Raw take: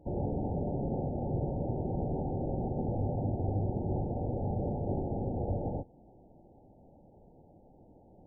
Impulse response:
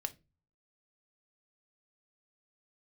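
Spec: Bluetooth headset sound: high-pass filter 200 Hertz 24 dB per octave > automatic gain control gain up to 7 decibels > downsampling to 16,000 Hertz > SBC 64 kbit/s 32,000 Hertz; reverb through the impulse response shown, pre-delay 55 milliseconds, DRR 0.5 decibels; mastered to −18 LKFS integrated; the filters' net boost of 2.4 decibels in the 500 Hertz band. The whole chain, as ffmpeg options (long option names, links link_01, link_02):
-filter_complex "[0:a]equalizer=frequency=500:width_type=o:gain=3,asplit=2[link_01][link_02];[1:a]atrim=start_sample=2205,adelay=55[link_03];[link_02][link_03]afir=irnorm=-1:irlink=0,volume=0dB[link_04];[link_01][link_04]amix=inputs=2:normalize=0,highpass=frequency=200:width=0.5412,highpass=frequency=200:width=1.3066,dynaudnorm=maxgain=7dB,aresample=16000,aresample=44100,volume=15dB" -ar 32000 -c:a sbc -b:a 64k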